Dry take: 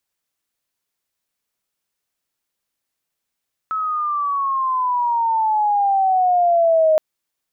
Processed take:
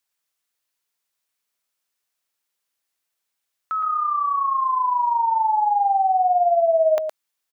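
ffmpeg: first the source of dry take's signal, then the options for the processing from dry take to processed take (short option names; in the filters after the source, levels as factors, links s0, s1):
-f lavfi -i "aevalsrc='pow(10,(-19.5+8.5*t/3.27)/20)*sin(2*PI*1300*3.27/log(620/1300)*(exp(log(620/1300)*t/3.27)-1))':d=3.27:s=44100"
-af "lowshelf=f=430:g=-10.5,aecho=1:1:115:0.398"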